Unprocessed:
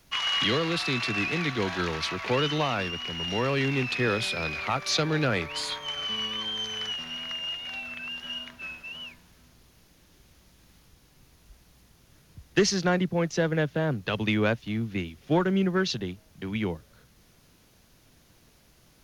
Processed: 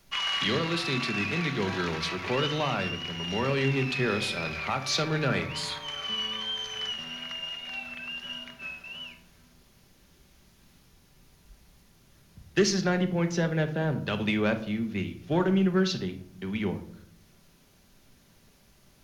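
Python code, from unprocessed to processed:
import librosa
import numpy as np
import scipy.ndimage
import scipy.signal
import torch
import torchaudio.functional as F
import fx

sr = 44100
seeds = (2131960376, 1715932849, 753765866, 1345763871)

p1 = 10.0 ** (-20.5 / 20.0) * np.tanh(x / 10.0 ** (-20.5 / 20.0))
p2 = x + (p1 * 10.0 ** (-9.0 / 20.0))
p3 = fx.room_shoebox(p2, sr, seeds[0], volume_m3=1000.0, walls='furnished', distance_m=1.2)
y = p3 * 10.0 ** (-4.5 / 20.0)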